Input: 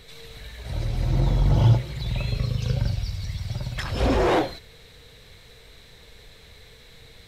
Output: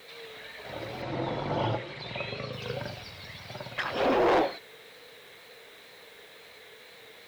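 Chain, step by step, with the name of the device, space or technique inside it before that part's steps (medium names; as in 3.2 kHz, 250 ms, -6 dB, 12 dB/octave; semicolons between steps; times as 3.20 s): tape answering machine (band-pass 370–3000 Hz; saturation -22 dBFS, distortion -11 dB; wow and flutter; white noise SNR 29 dB); 1.02–2.53 s: low-pass 6.2 kHz 12 dB/octave; trim +3.5 dB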